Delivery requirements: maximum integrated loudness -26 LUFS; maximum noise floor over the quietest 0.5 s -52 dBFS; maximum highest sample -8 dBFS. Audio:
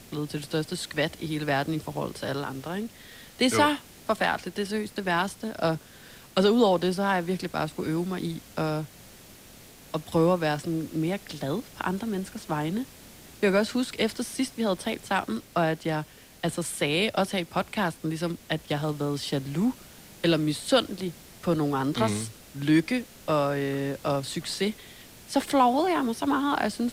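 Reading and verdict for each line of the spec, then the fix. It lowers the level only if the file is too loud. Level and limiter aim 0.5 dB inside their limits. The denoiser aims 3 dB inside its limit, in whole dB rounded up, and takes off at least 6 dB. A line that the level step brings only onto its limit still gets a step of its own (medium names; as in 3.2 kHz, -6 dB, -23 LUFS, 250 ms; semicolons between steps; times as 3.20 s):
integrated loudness -27.5 LUFS: pass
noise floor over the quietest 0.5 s -50 dBFS: fail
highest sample -9.0 dBFS: pass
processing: noise reduction 6 dB, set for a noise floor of -50 dBFS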